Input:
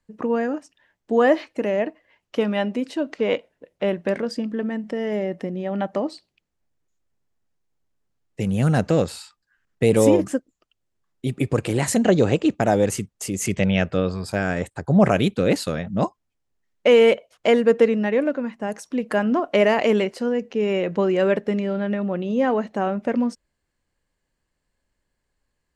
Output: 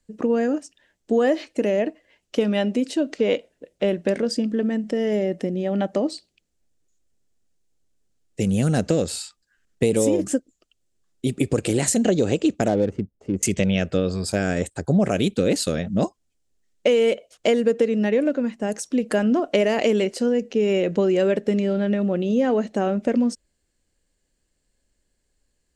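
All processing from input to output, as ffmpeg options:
-filter_complex "[0:a]asettb=1/sr,asplit=3[a][b][c];[a]atrim=end=12.684[d];[b]atrim=start=12.68:end=13.43,asetpts=PTS-STARTPTS,afade=t=in:d=0.004:c=qsin,afade=t=out:st=0.746:d=0.004:c=qsin,highshelf=f=2.1k:g=-11.5,adynamicsmooth=sensitivity=3:basefreq=830[e];[c]atrim=start=13.426[f];[d][e]acrossfade=d=0.004:c1=hsin:c2=qsin[g];[g][f]acrossfade=d=0.004:c1=qsin:c2=hsin,equalizer=f=125:t=o:w=1:g=-6,equalizer=f=1k:t=o:w=1:g=-10,equalizer=f=2k:t=o:w=1:g=-4,equalizer=f=8k:t=o:w=1:g=8,acompressor=threshold=-21dB:ratio=6,highshelf=f=8.4k:g=-7,volume=5.5dB"

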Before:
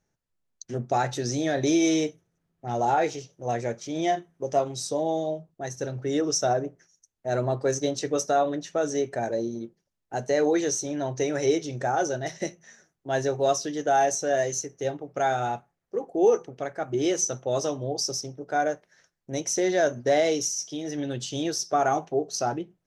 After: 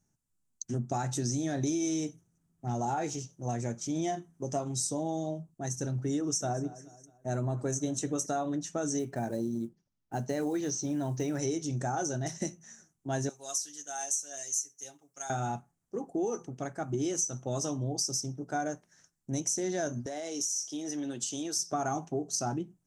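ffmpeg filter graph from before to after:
-filter_complex "[0:a]asettb=1/sr,asplit=3[a][b][c];[a]atrim=end=6.194[d];[b]atrim=start=6.19:end=8.26,asetpts=PTS-STARTPTS,afade=t=in:d=0.004:c=qsin,afade=t=out:st=2.066:d=0.004:c=qsin,equalizer=f=4.8k:w=4.1:g=-10,aecho=1:1:214|428|642:0.0891|0.0357|0.0143,atrim=end_sample=91287[e];[c]atrim=start=8.256[f];[d][e]acrossfade=d=0.004:c1=hsin:c2=qsin[g];[g][f]acrossfade=d=0.004:c1=qsin:c2=hsin,asettb=1/sr,asplit=3[h][i][j];[h]atrim=end=8.994[k];[i]atrim=start=8.99:end=11.39,asetpts=PTS-STARTPTS,afade=t=in:d=0.004:c=qsin,afade=t=out:st=2.396:d=0.004:c=qsin,lowpass=f=5.1k:w=0.5412,lowpass=f=5.1k:w=1.3066,acrusher=bits=9:mode=log:mix=0:aa=0.000001[l];[j]atrim=start=11.386[m];[k][l]acrossfade=d=0.004:c1=hsin:c2=qsin[n];[n][m]acrossfade=d=0.004:c1=qsin:c2=hsin,asettb=1/sr,asplit=3[o][p][q];[o]atrim=end=13.294[r];[p]atrim=start=13.29:end=15.3,asetpts=PTS-STARTPTS,afade=t=in:d=0.004:c=qsin,afade=t=out:st=2.006:d=0.004:c=qsin,aderivative,aecho=1:1:7.3:0.77,atrim=end_sample=88641[s];[q]atrim=start=15.296[t];[r][s]acrossfade=d=0.004:c1=hsin:c2=qsin[u];[u][t]acrossfade=d=0.004:c1=qsin:c2=hsin,asettb=1/sr,asplit=3[v][w][x];[v]atrim=end=20.064[y];[w]atrim=start=20.06:end=21.56,asetpts=PTS-STARTPTS,afade=t=in:d=0.004:c=qsin,afade=t=out:st=1.496:d=0.004:c=qsin,highpass=330,acompressor=threshold=-30dB:ratio=4:attack=3.2:release=140:knee=1:detection=peak[z];[x]atrim=start=21.556[aa];[y][z]acrossfade=d=0.004:c1=hsin:c2=qsin[ab];[ab][aa]acrossfade=d=0.004:c1=qsin:c2=hsin,equalizer=f=125:t=o:w=1:g=3,equalizer=f=250:t=o:w=1:g=5,equalizer=f=500:t=o:w=1:g=-10,equalizer=f=2k:t=o:w=1:g=-7,equalizer=f=4k:t=o:w=1:g=-7,equalizer=f=8k:t=o:w=1:g=10,acompressor=threshold=-28dB:ratio=6"

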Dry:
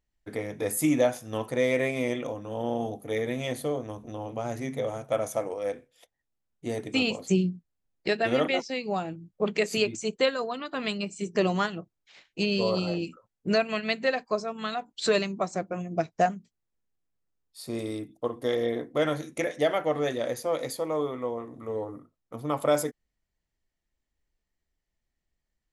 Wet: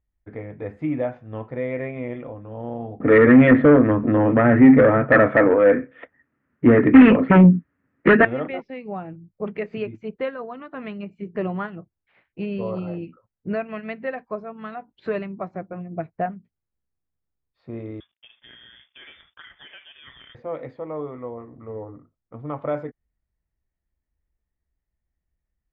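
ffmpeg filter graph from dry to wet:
-filter_complex "[0:a]asettb=1/sr,asplit=3[a][b][c];[a]atrim=end=3.004[d];[b]atrim=start=3:end=8.25,asetpts=PTS-STARTPTS,afade=t=in:d=0.004:c=qsin,afade=t=out:st=5.246:d=0.004:c=qsin,aeval=exprs='0.251*sin(PI/2*3.16*val(0)/0.251)':c=same,highpass=150,equalizer=f=270:t=q:w=4:g=10,equalizer=f=770:t=q:w=4:g=-7,equalizer=f=1.3k:t=q:w=4:g=7,equalizer=f=1.8k:t=q:w=4:g=9,lowpass=f=3k:w=0.5412,lowpass=f=3k:w=1.3066,acontrast=81[e];[c]atrim=start=8.246[f];[d][e]acrossfade=d=0.004:c1=hsin:c2=qsin[g];[g][f]acrossfade=d=0.004:c1=qsin:c2=hsin,asettb=1/sr,asplit=3[h][i][j];[h]atrim=end=18.004[k];[i]atrim=start=18:end=20.35,asetpts=PTS-STARTPTS,afade=t=in:d=0.004:c=qsin,afade=t=out:st=2.346:d=0.004:c=qsin,acompressor=threshold=-29dB:ratio=4:attack=3.2:release=140:knee=1:detection=peak,aeval=exprs='sgn(val(0))*max(abs(val(0))-0.00178,0)':c=same,lowpass=f=3.1k:t=q:w=0.5098,lowpass=f=3.1k:t=q:w=0.6013,lowpass=f=3.1k:t=q:w=0.9,lowpass=f=3.1k:t=q:w=2.563,afreqshift=-3700[l];[j]atrim=start=20.346[m];[k][l]acrossfade=d=0.004:c1=hsin:c2=qsin[n];[n][m]acrossfade=d=0.004:c1=qsin:c2=hsin,lowpass=f=2.2k:w=0.5412,lowpass=f=2.2k:w=1.3066,equalizer=f=62:w=0.55:g=10.5,volume=-3dB"

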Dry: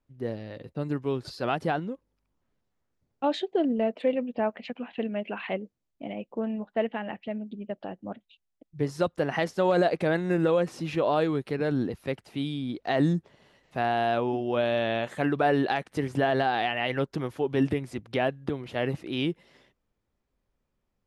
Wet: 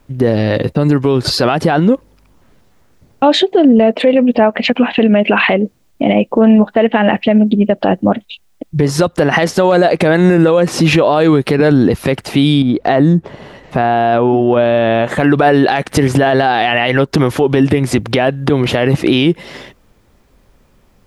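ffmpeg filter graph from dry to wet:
-filter_complex "[0:a]asettb=1/sr,asplit=3[a][b][c];[a]atrim=end=12.624[d];[b]atrim=start=12.62:end=15.2,asetpts=PTS-STARTPTS,afade=t=in:d=0.004:c=qsin,afade=t=out:st=2.576:d=0.004:c=qsin,highshelf=f=2.3k:g=-11,acompressor=threshold=-39dB:ratio=2.5:attack=3.2:release=140:knee=1:detection=peak[e];[c]atrim=start=15.196[f];[d][e]acrossfade=d=0.004:c1=hsin:c2=qsin[g];[g][f]acrossfade=d=0.004:c1=qsin:c2=hsin,acompressor=threshold=-31dB:ratio=4,alimiter=level_in=28.5dB:limit=-1dB:release=50:level=0:latency=1,volume=-1dB"

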